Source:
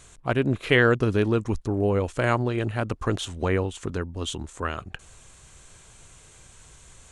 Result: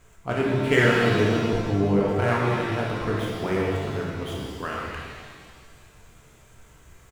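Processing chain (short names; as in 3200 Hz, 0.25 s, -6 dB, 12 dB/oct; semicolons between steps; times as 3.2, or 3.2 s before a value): median filter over 9 samples; doubler 30 ms -11 dB; shimmer reverb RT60 1.8 s, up +7 st, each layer -8 dB, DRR -3.5 dB; gain -4.5 dB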